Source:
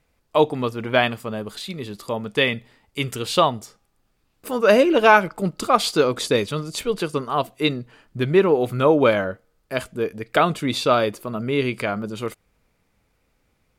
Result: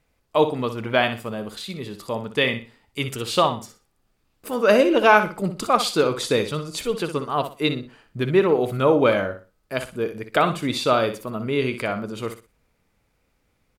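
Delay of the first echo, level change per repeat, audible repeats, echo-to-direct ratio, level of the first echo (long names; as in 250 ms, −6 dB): 61 ms, −11.5 dB, 3, −9.5 dB, −10.0 dB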